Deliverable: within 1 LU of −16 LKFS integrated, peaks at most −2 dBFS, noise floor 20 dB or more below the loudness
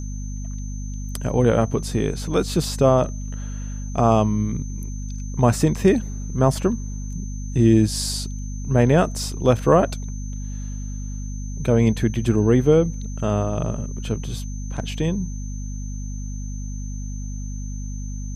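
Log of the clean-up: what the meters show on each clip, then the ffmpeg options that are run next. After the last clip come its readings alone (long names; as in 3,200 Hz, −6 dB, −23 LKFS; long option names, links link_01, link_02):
mains hum 50 Hz; hum harmonics up to 250 Hz; level of the hum −27 dBFS; interfering tone 6,200 Hz; level of the tone −42 dBFS; integrated loudness −23.0 LKFS; sample peak −3.5 dBFS; target loudness −16.0 LKFS
→ -af "bandreject=frequency=50:width_type=h:width=4,bandreject=frequency=100:width_type=h:width=4,bandreject=frequency=150:width_type=h:width=4,bandreject=frequency=200:width_type=h:width=4,bandreject=frequency=250:width_type=h:width=4"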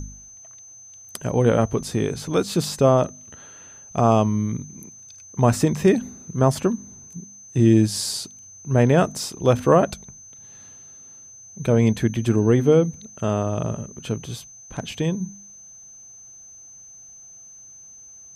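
mains hum none found; interfering tone 6,200 Hz; level of the tone −42 dBFS
→ -af "bandreject=frequency=6200:width=30"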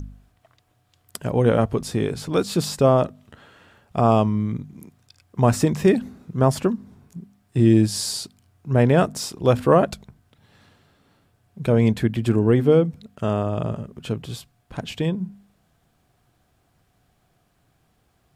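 interfering tone none found; integrated loudness −21.0 LKFS; sample peak −4.5 dBFS; target loudness −16.0 LKFS
→ -af "volume=5dB,alimiter=limit=-2dB:level=0:latency=1"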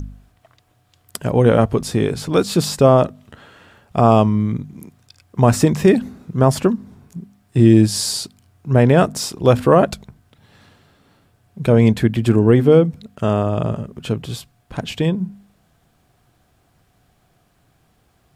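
integrated loudness −16.5 LKFS; sample peak −2.0 dBFS; background noise floor −61 dBFS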